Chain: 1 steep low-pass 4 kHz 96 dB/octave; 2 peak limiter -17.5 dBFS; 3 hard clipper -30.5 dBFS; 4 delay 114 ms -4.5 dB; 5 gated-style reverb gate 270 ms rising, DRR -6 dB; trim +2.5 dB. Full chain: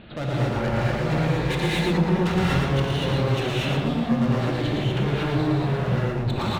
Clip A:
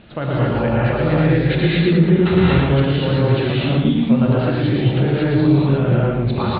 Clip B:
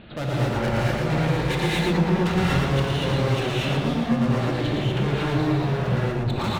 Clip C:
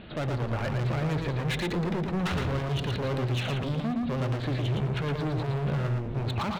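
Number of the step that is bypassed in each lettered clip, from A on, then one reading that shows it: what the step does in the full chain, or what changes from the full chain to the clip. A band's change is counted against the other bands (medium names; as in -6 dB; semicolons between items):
3, distortion -6 dB; 2, mean gain reduction 2.0 dB; 5, echo-to-direct 7.5 dB to -4.5 dB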